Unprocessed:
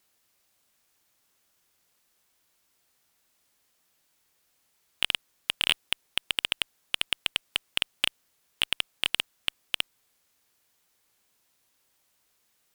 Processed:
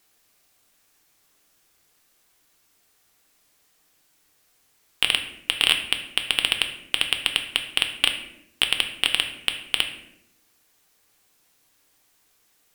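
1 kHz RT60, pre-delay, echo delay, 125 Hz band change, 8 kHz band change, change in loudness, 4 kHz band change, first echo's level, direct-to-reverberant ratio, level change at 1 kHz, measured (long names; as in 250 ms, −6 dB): 0.65 s, 3 ms, no echo audible, +7.0 dB, +6.5 dB, +6.5 dB, +6.5 dB, no echo audible, 4.5 dB, +6.5 dB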